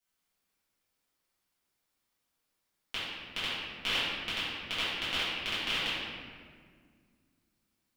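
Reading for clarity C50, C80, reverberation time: -3.0 dB, 0.0 dB, 1.9 s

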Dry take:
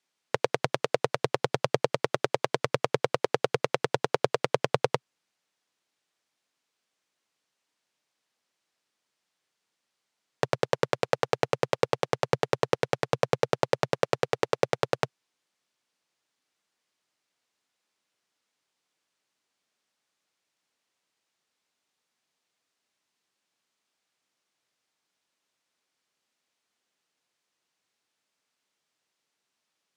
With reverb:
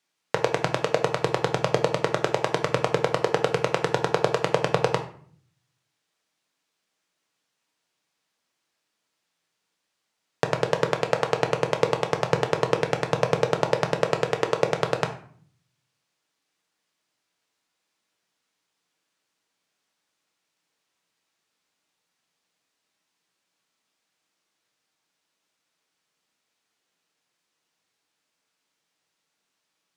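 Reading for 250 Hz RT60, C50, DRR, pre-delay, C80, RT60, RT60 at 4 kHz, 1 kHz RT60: 0.85 s, 11.0 dB, 4.5 dB, 6 ms, 15.0 dB, 0.55 s, 0.35 s, 0.50 s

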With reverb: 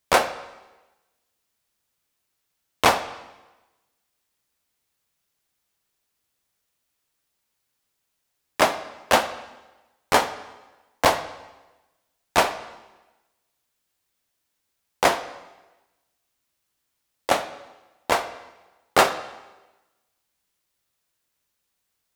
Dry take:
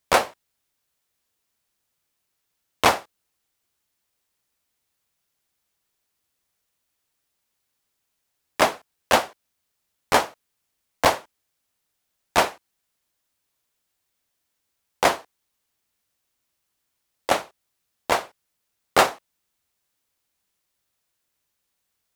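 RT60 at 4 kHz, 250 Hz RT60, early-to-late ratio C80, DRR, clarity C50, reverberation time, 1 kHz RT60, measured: 1.0 s, 1.1 s, 14.5 dB, 10.5 dB, 12.5 dB, 1.1 s, 1.1 s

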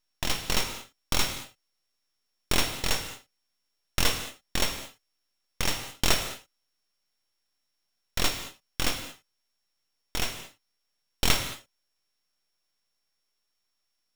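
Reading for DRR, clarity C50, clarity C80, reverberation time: 7.0 dB, 8.0 dB, 10.0 dB, not exponential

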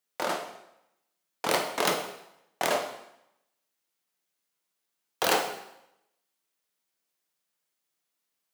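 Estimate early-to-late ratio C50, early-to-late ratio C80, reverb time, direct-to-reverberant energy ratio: 7.5 dB, 10.0 dB, 0.80 s, 3.0 dB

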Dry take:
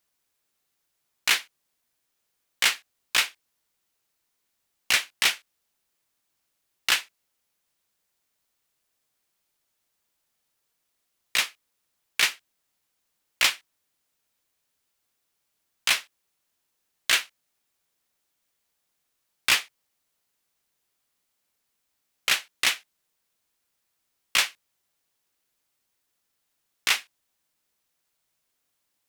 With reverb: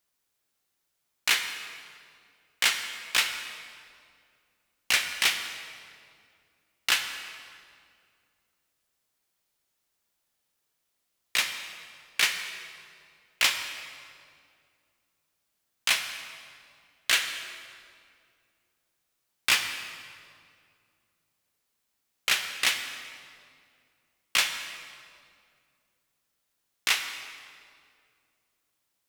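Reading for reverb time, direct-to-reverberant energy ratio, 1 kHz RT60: 2.2 s, 6.5 dB, 2.1 s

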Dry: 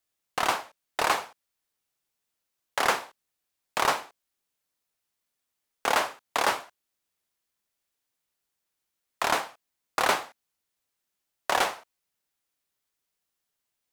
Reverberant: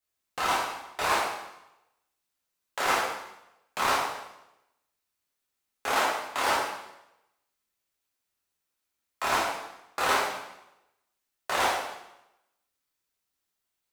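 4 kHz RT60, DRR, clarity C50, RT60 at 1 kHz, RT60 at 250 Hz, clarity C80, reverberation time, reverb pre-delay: 0.85 s, -7.0 dB, 1.5 dB, 0.90 s, 0.90 s, 4.5 dB, 0.90 s, 4 ms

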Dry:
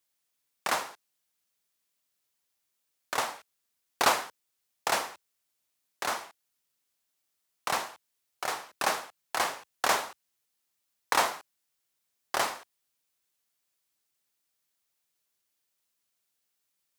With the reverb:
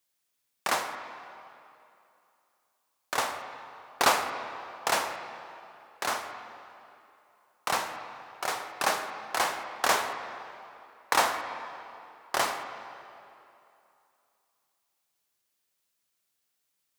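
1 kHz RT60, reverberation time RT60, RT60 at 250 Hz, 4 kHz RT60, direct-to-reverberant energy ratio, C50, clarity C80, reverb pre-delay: 2.8 s, 2.8 s, 2.6 s, 2.2 s, 6.5 dB, 7.5 dB, 8.5 dB, 13 ms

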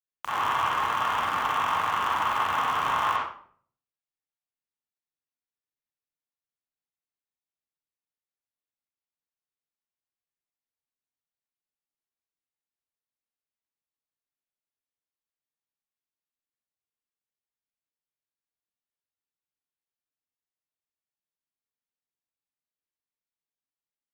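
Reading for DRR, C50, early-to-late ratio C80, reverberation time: -8.0 dB, -2.0 dB, 4.5 dB, 0.55 s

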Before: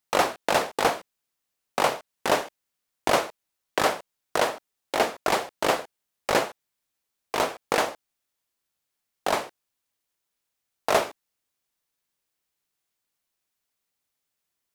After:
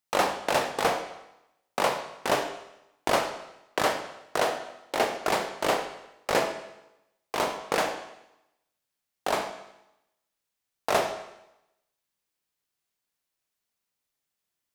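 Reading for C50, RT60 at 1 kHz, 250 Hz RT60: 8.0 dB, 0.90 s, 0.85 s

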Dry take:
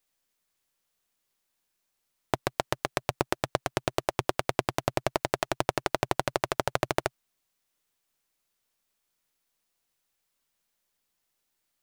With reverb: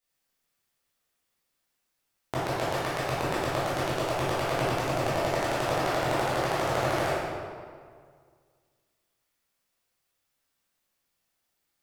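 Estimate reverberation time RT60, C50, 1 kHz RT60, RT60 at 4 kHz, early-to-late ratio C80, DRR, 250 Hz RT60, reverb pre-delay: 1.9 s, -4.0 dB, 1.9 s, 1.3 s, -0.5 dB, -11.0 dB, 2.0 s, 12 ms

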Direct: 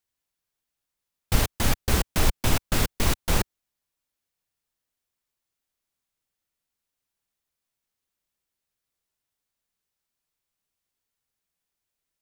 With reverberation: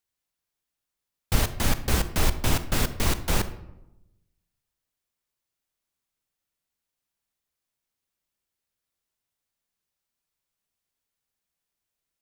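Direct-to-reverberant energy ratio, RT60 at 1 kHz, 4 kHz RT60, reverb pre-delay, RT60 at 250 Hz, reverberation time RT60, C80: 11.5 dB, 0.85 s, 0.50 s, 29 ms, 1.2 s, 0.95 s, 15.5 dB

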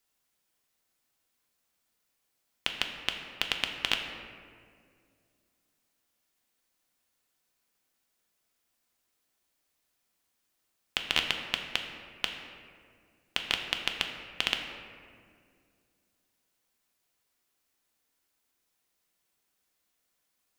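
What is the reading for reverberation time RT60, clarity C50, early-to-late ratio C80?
2.1 s, 5.5 dB, 6.5 dB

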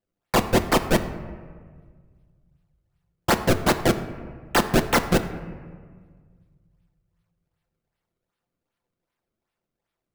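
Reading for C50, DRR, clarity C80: 11.5 dB, 6.0 dB, 13.0 dB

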